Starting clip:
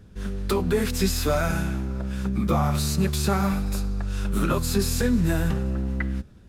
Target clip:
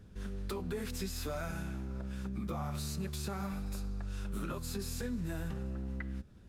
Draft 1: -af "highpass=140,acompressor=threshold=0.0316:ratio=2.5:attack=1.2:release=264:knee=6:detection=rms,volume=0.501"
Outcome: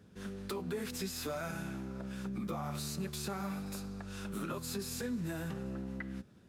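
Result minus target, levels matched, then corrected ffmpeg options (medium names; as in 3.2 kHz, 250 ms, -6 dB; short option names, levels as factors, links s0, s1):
125 Hz band -2.5 dB
-af "acompressor=threshold=0.0316:ratio=2.5:attack=1.2:release=264:knee=6:detection=rms,volume=0.501"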